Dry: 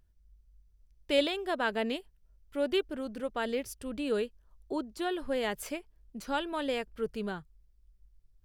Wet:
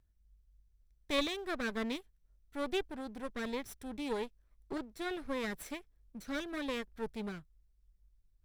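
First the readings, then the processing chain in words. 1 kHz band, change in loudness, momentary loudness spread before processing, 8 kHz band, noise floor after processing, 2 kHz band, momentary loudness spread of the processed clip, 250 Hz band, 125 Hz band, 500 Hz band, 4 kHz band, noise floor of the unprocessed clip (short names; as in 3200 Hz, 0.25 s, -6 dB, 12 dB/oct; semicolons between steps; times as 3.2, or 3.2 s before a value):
-6.5 dB, -5.5 dB, 10 LU, -3.5 dB, -71 dBFS, -4.0 dB, 10 LU, -3.5 dB, n/a, -7.5 dB, -4.5 dB, -66 dBFS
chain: minimum comb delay 0.53 ms; gain -4.5 dB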